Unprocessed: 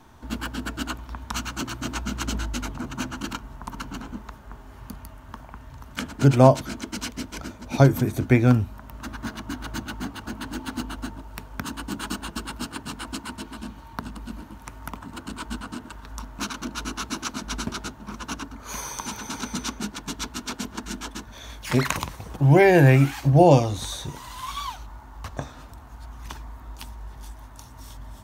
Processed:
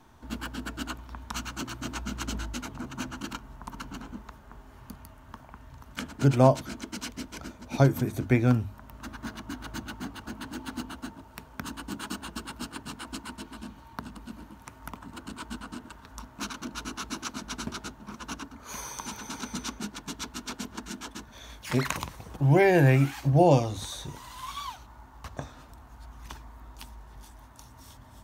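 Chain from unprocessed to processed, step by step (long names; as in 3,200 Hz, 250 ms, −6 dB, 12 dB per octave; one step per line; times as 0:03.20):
mains-hum notches 50/100 Hz
level −5 dB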